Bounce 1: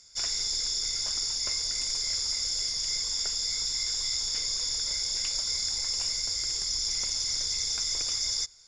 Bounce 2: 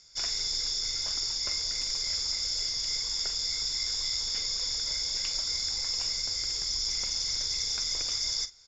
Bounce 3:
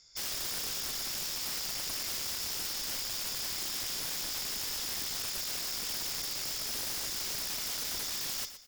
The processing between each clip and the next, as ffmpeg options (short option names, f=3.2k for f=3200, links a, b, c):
-filter_complex "[0:a]lowpass=f=6.5k:w=0.5412,lowpass=f=6.5k:w=1.3066,asplit=2[a][b];[b]adelay=44,volume=-13dB[c];[a][c]amix=inputs=2:normalize=0"
-af "aeval=exprs='(mod(22.4*val(0)+1,2)-1)/22.4':c=same,aecho=1:1:119|238|357:0.237|0.0664|0.0186,volume=-3.5dB"